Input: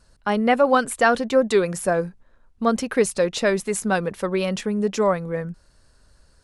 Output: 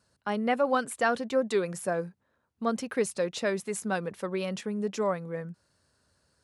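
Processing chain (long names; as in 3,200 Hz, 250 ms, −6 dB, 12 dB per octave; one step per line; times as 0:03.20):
high-pass filter 84 Hz 24 dB per octave
level −8.5 dB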